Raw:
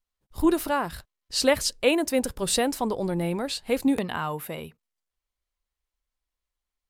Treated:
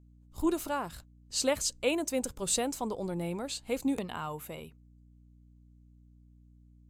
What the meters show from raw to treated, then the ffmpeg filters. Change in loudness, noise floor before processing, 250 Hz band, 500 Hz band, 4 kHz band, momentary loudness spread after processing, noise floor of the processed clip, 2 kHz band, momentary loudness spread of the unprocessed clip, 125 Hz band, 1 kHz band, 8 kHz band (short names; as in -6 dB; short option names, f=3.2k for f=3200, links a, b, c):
-7.0 dB, under -85 dBFS, -7.5 dB, -7.5 dB, -7.5 dB, 14 LU, -59 dBFS, -9.0 dB, 12 LU, -7.0 dB, -7.5 dB, -2.5 dB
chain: -af "aeval=exprs='val(0)+0.00355*(sin(2*PI*60*n/s)+sin(2*PI*2*60*n/s)/2+sin(2*PI*3*60*n/s)/3+sin(2*PI*4*60*n/s)/4+sin(2*PI*5*60*n/s)/5)':c=same,superequalizer=11b=0.631:15b=2.24,volume=-7.5dB"